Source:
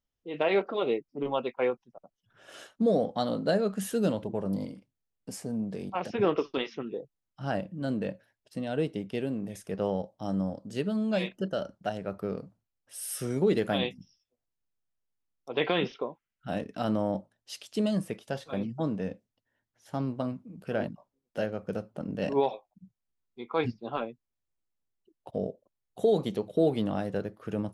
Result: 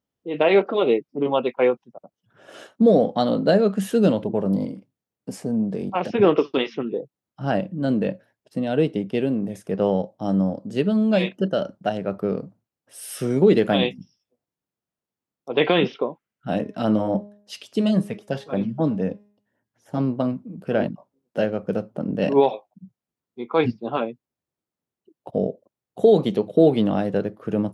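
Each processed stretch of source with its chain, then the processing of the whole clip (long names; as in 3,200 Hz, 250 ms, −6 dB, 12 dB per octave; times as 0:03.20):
0:16.56–0:19.98: auto-filter notch sine 3.7 Hz 340–4,400 Hz + hum removal 205.7 Hz, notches 30
whole clip: dynamic equaliser 3,000 Hz, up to +7 dB, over −50 dBFS, Q 0.85; high-pass filter 130 Hz 12 dB per octave; tilt shelving filter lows +5.5 dB, about 1,200 Hz; level +5 dB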